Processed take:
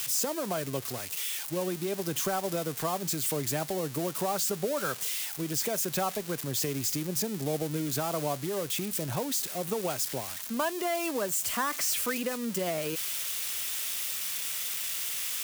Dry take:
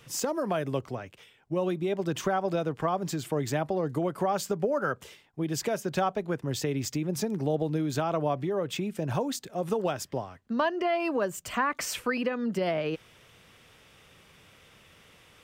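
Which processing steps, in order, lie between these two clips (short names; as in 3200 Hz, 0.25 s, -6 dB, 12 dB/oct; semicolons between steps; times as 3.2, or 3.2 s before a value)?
switching spikes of -21 dBFS; gain -3.5 dB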